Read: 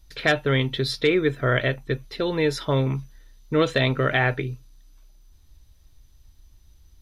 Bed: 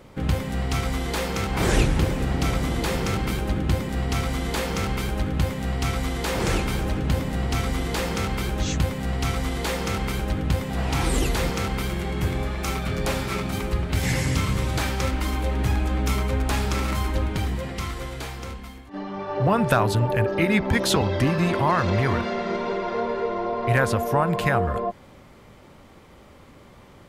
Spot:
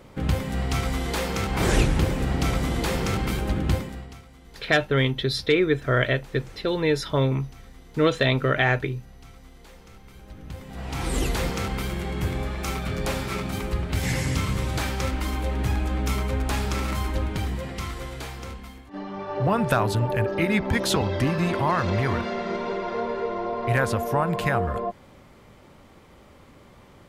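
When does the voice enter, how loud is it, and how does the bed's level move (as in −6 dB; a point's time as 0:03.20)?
4.45 s, 0.0 dB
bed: 0:03.75 −0.5 dB
0:04.25 −23.5 dB
0:10.04 −23.5 dB
0:11.21 −2 dB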